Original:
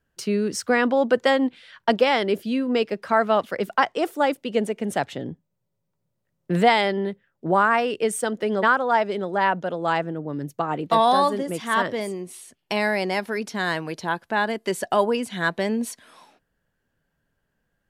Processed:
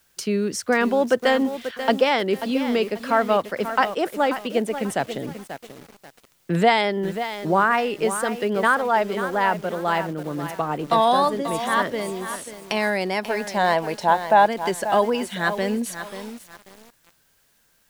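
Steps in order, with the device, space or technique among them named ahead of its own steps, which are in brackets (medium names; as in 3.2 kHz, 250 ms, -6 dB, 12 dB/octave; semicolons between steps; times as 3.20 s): noise-reduction cassette on a plain deck (tape noise reduction on one side only encoder only; wow and flutter; white noise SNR 40 dB); 13.23–14.46 s: high-order bell 710 Hz +11 dB 1.1 oct; bit-crushed delay 537 ms, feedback 35%, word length 6-bit, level -10 dB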